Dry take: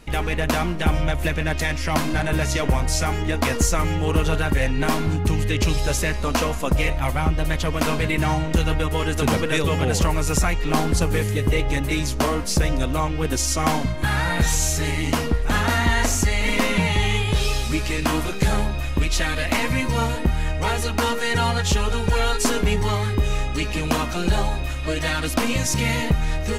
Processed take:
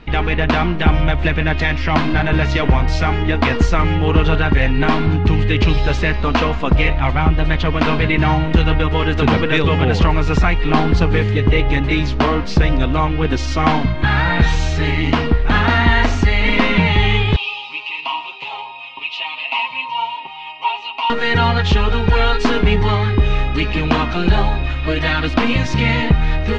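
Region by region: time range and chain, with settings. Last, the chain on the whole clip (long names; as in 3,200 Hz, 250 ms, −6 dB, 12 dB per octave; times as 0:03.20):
0:17.36–0:21.10: pair of resonant band-passes 1,600 Hz, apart 1.5 octaves + spectral tilt +2.5 dB per octave + comb filter 7.4 ms, depth 78%
whole clip: low-pass filter 3,900 Hz 24 dB per octave; parametric band 560 Hz −6.5 dB 0.26 octaves; level +6.5 dB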